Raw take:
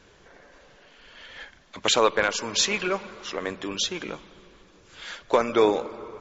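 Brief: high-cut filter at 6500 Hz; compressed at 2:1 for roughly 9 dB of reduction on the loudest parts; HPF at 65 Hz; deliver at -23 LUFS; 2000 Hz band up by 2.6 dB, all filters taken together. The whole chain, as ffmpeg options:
-af "highpass=65,lowpass=6.5k,equalizer=f=2k:t=o:g=3.5,acompressor=threshold=-31dB:ratio=2,volume=9dB"

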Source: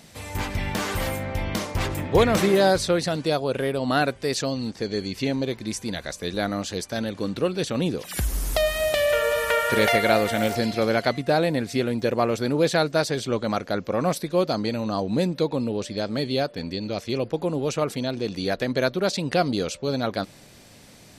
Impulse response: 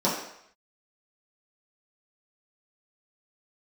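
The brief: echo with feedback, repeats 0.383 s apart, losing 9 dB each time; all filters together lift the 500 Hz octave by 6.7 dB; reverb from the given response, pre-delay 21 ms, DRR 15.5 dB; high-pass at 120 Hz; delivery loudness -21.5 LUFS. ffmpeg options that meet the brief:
-filter_complex "[0:a]highpass=120,equalizer=f=500:t=o:g=8,aecho=1:1:383|766|1149|1532:0.355|0.124|0.0435|0.0152,asplit=2[a][b];[1:a]atrim=start_sample=2205,adelay=21[c];[b][c]afir=irnorm=-1:irlink=0,volume=-29.5dB[d];[a][d]amix=inputs=2:normalize=0,volume=-2dB"

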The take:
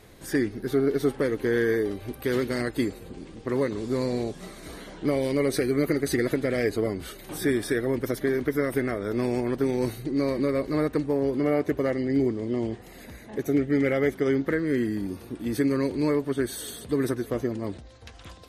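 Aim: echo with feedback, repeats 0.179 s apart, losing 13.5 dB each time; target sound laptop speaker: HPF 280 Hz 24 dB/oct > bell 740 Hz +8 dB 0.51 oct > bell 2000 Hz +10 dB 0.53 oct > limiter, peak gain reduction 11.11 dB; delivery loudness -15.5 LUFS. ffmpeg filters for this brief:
-af "highpass=f=280:w=0.5412,highpass=f=280:w=1.3066,equalizer=f=740:t=o:w=0.51:g=8,equalizer=f=2k:t=o:w=0.53:g=10,aecho=1:1:179|358:0.211|0.0444,volume=15dB,alimiter=limit=-5dB:level=0:latency=1"

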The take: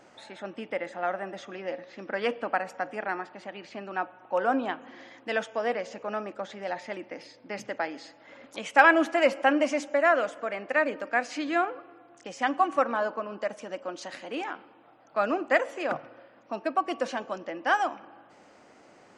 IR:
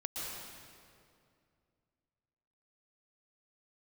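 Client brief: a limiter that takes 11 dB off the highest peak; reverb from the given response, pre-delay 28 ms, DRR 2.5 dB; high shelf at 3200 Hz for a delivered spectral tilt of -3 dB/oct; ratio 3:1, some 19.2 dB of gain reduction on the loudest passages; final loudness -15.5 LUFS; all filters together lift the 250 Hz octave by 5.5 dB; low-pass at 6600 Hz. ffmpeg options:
-filter_complex "[0:a]lowpass=6.6k,equalizer=f=250:t=o:g=7,highshelf=f=3.2k:g=4.5,acompressor=threshold=-39dB:ratio=3,alimiter=level_in=7.5dB:limit=-24dB:level=0:latency=1,volume=-7.5dB,asplit=2[a][b];[1:a]atrim=start_sample=2205,adelay=28[c];[b][c]afir=irnorm=-1:irlink=0,volume=-4.5dB[d];[a][d]amix=inputs=2:normalize=0,volume=25.5dB"

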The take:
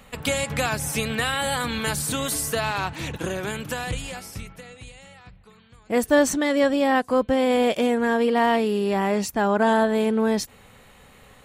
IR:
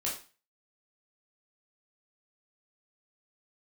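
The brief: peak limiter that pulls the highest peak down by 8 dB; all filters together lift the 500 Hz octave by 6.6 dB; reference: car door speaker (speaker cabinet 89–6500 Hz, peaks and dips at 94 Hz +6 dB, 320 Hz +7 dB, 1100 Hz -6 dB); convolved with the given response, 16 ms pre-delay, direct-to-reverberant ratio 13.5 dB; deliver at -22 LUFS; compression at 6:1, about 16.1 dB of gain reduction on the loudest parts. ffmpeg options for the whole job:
-filter_complex "[0:a]equalizer=f=500:t=o:g=7,acompressor=threshold=-28dB:ratio=6,alimiter=level_in=0.5dB:limit=-24dB:level=0:latency=1,volume=-0.5dB,asplit=2[a][b];[1:a]atrim=start_sample=2205,adelay=16[c];[b][c]afir=irnorm=-1:irlink=0,volume=-17.5dB[d];[a][d]amix=inputs=2:normalize=0,highpass=89,equalizer=f=94:t=q:w=4:g=6,equalizer=f=320:t=q:w=4:g=7,equalizer=f=1.1k:t=q:w=4:g=-6,lowpass=f=6.5k:w=0.5412,lowpass=f=6.5k:w=1.3066,volume=11.5dB"

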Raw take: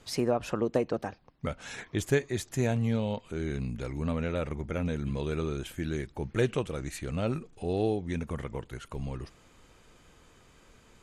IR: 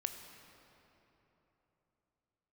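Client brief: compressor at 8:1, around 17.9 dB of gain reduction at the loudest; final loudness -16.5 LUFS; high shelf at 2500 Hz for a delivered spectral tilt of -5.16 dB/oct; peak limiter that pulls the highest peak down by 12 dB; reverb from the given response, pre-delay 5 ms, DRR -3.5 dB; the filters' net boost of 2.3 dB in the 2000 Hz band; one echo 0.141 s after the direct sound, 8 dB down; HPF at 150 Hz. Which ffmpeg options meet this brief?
-filter_complex "[0:a]highpass=150,equalizer=f=2k:t=o:g=4.5,highshelf=f=2.5k:g=-3.5,acompressor=threshold=-40dB:ratio=8,alimiter=level_in=12.5dB:limit=-24dB:level=0:latency=1,volume=-12.5dB,aecho=1:1:141:0.398,asplit=2[a][b];[1:a]atrim=start_sample=2205,adelay=5[c];[b][c]afir=irnorm=-1:irlink=0,volume=3.5dB[d];[a][d]amix=inputs=2:normalize=0,volume=26.5dB"

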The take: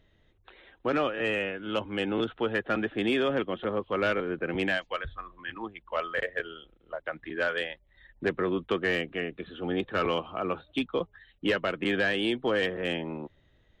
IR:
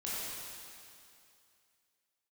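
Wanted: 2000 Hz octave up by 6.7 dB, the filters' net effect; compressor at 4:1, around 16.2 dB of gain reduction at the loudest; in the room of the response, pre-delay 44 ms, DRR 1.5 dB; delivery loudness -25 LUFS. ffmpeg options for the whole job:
-filter_complex "[0:a]equalizer=f=2k:t=o:g=8.5,acompressor=threshold=-39dB:ratio=4,asplit=2[a][b];[1:a]atrim=start_sample=2205,adelay=44[c];[b][c]afir=irnorm=-1:irlink=0,volume=-5dB[d];[a][d]amix=inputs=2:normalize=0,volume=13.5dB"

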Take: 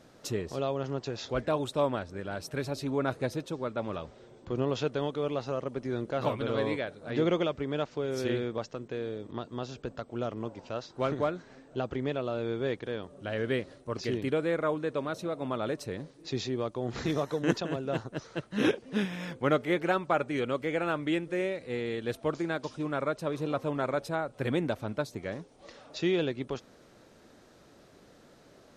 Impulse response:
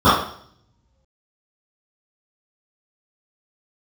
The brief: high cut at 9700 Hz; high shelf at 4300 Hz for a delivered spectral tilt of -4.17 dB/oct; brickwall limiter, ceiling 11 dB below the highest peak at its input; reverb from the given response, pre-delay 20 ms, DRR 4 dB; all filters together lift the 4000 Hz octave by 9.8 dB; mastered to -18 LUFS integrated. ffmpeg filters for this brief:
-filter_complex "[0:a]lowpass=9.7k,equalizer=f=4k:t=o:g=8,highshelf=f=4.3k:g=8,alimiter=limit=-22.5dB:level=0:latency=1,asplit=2[a][b];[1:a]atrim=start_sample=2205,adelay=20[c];[b][c]afir=irnorm=-1:irlink=0,volume=-32.5dB[d];[a][d]amix=inputs=2:normalize=0,volume=14.5dB"

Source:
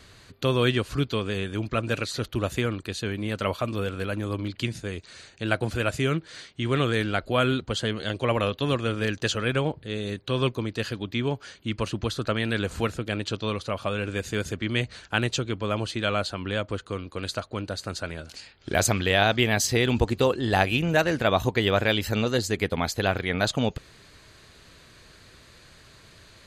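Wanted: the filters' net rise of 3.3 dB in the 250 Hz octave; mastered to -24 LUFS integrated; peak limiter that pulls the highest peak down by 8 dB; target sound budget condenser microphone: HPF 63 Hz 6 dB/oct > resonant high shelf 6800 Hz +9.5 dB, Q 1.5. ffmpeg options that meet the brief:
-af "equalizer=f=250:t=o:g=4.5,alimiter=limit=-12dB:level=0:latency=1,highpass=f=63:p=1,highshelf=f=6.8k:t=q:w=1.5:g=9.5,volume=2.5dB"

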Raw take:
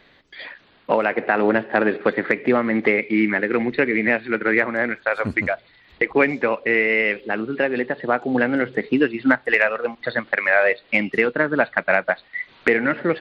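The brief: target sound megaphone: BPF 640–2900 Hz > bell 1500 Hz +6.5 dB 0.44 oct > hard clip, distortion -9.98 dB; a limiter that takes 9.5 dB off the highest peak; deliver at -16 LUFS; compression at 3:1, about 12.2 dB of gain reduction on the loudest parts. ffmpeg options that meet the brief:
-af "acompressor=threshold=-30dB:ratio=3,alimiter=limit=-21.5dB:level=0:latency=1,highpass=640,lowpass=2.9k,equalizer=f=1.5k:t=o:w=0.44:g=6.5,asoftclip=type=hard:threshold=-30dB,volume=20.5dB"

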